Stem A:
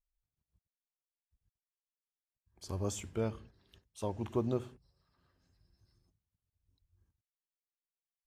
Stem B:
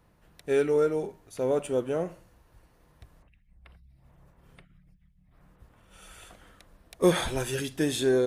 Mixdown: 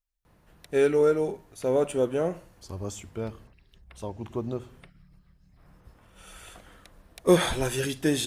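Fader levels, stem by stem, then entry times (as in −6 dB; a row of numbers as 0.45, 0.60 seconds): +1.0, +2.5 decibels; 0.00, 0.25 seconds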